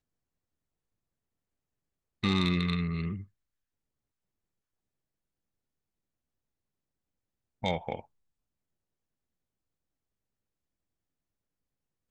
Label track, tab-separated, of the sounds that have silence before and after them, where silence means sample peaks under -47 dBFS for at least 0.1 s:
2.230000	3.250000	sound
7.630000	8.010000	sound